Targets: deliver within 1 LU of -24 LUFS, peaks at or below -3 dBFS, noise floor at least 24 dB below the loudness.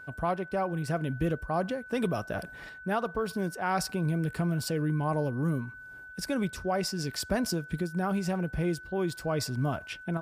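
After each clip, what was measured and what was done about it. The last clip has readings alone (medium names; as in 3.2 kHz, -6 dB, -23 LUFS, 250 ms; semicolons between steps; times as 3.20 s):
steady tone 1.5 kHz; tone level -44 dBFS; loudness -31.0 LUFS; peak level -16.5 dBFS; loudness target -24.0 LUFS
-> band-stop 1.5 kHz, Q 30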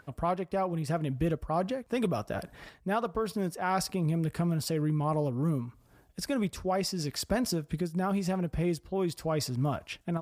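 steady tone not found; loudness -31.5 LUFS; peak level -16.5 dBFS; loudness target -24.0 LUFS
-> trim +7.5 dB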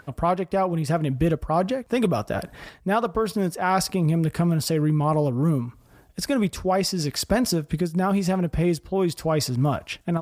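loudness -24.0 LUFS; peak level -9.0 dBFS; noise floor -55 dBFS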